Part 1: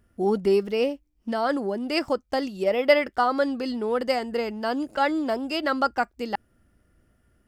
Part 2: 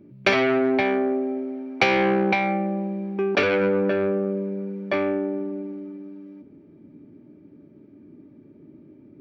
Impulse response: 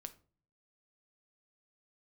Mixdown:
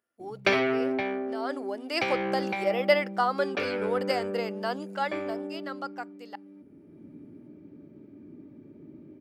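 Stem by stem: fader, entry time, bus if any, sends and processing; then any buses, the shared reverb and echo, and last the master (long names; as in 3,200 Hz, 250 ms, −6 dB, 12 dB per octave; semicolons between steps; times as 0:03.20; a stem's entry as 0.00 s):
0:01.23 −14 dB → 0:01.70 −4 dB → 0:04.80 −4 dB → 0:05.52 −14 dB, 0.00 s, send −11 dB, high-pass filter 460 Hz 12 dB per octave
0.0 dB, 0.20 s, no send, automatic ducking −10 dB, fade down 1.25 s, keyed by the first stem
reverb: on, RT60 0.40 s, pre-delay 6 ms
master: no processing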